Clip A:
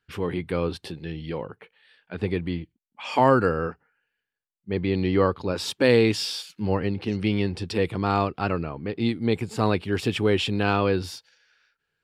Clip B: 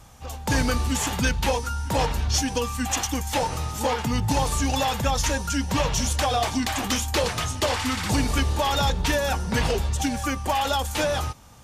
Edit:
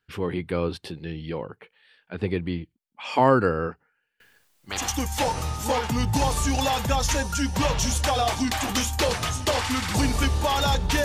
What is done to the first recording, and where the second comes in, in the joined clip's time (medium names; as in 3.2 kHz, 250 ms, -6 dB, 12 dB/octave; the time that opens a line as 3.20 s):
clip A
4.20–4.88 s: spectrum-flattening compressor 10:1
4.78 s: go over to clip B from 2.93 s, crossfade 0.20 s